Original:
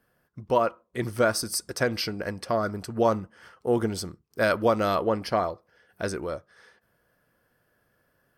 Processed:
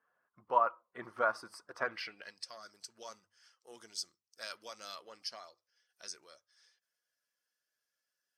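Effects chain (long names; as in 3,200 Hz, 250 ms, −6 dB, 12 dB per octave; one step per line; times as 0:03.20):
spectral magnitudes quantised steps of 15 dB
mains-hum notches 50/100 Hz
band-pass filter sweep 1,100 Hz → 5,800 Hz, 0:01.81–0:02.45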